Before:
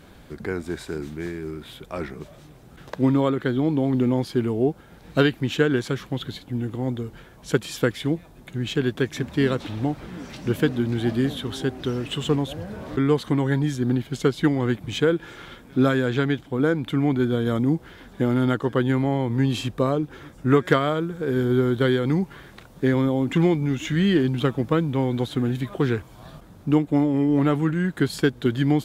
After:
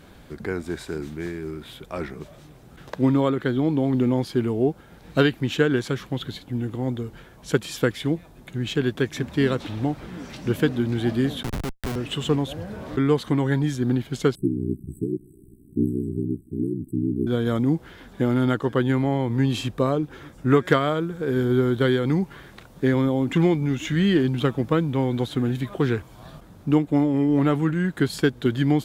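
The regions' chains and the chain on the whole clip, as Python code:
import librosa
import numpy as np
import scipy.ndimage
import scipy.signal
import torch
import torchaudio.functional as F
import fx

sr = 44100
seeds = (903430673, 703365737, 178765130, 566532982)

y = fx.chain(x, sr, fx.schmitt(flips_db=-25.5),
    fx.band_squash(depth_pct=40), at=(11.43, 11.96))
y = fx.chain(y, sr, fx.ring_mod(carrier_hz=31.0),
    fx.brickwall_bandstop(low_hz=420.0, high_hz=7800.0), at=(14.35, 17.27))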